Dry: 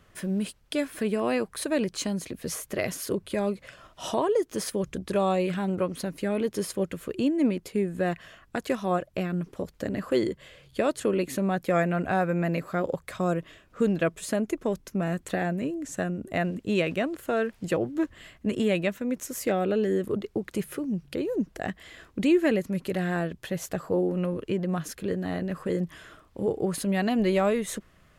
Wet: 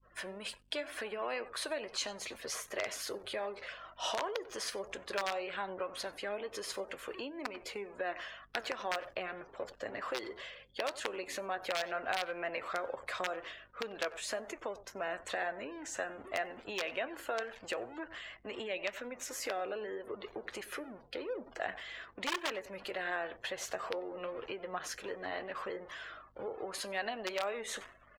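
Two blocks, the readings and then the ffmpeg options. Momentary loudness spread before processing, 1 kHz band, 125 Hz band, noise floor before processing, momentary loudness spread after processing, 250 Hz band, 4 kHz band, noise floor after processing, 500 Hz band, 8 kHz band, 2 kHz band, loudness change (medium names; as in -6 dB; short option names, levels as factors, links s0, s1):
8 LU, -6.5 dB, -28.0 dB, -59 dBFS, 8 LU, -21.5 dB, -1.0 dB, -60 dBFS, -11.5 dB, -5.5 dB, -3.5 dB, -11.0 dB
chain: -filter_complex "[0:a]aeval=exprs='val(0)+0.5*0.0141*sgn(val(0))':c=same,equalizer=f=170:t=o:w=0.44:g=-12,flanger=delay=7:depth=4.1:regen=75:speed=2:shape=triangular,aeval=exprs='(mod(9.44*val(0)+1,2)-1)/9.44':c=same,asplit=2[s0][s1];[s1]adelay=93.29,volume=0.126,highshelf=f=4000:g=-2.1[s2];[s0][s2]amix=inputs=2:normalize=0,agate=range=0.0224:threshold=0.01:ratio=3:detection=peak,aeval=exprs='val(0)+0.002*(sin(2*PI*50*n/s)+sin(2*PI*2*50*n/s)/2+sin(2*PI*3*50*n/s)/3+sin(2*PI*4*50*n/s)/4+sin(2*PI*5*50*n/s)/5)':c=same,acompressor=threshold=0.0251:ratio=8,afftdn=nr=33:nf=-55,acrossover=split=520 6500:gain=0.112 1 0.2[s3][s4][s5];[s3][s4][s5]amix=inputs=3:normalize=0,volume=1.5"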